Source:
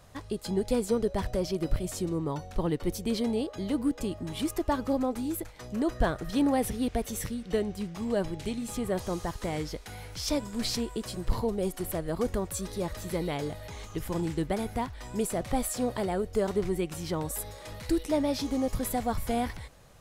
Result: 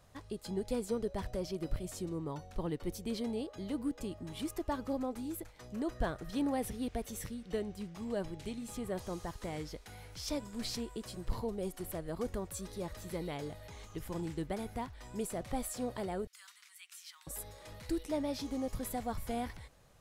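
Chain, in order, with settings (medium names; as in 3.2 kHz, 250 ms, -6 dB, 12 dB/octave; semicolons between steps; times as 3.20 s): 16.27–17.27 s: Bessel high-pass 2.2 kHz, order 8; trim -8 dB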